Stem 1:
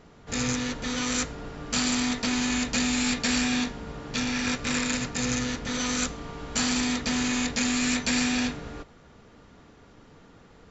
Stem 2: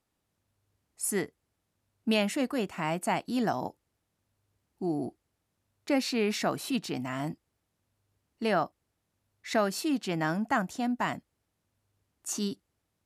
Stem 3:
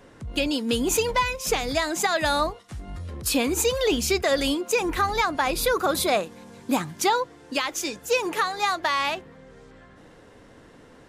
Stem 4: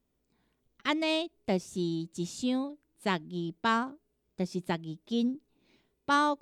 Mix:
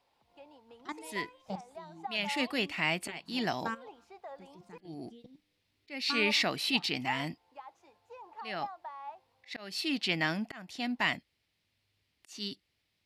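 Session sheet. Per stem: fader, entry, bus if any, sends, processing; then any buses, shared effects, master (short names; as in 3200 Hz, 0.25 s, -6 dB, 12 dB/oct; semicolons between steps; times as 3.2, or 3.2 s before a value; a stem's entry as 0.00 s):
off
-4.0 dB, 0.00 s, no send, auto swell 0.406 s; band shelf 3100 Hz +13.5 dB
-11.5 dB, 0.00 s, muted 4.78–6.61, no send, band-pass 840 Hz, Q 5.6
-1.0 dB, 0.00 s, no send, resonator 99 Hz, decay 1.2 s, harmonics all, mix 50%; level quantiser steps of 16 dB; endless phaser +2.9 Hz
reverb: off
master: dry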